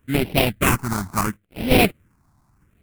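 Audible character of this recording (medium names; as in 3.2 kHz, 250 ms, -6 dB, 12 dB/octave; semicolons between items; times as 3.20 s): aliases and images of a low sample rate 1.8 kHz, jitter 20%; phasing stages 4, 0.74 Hz, lowest notch 460–1200 Hz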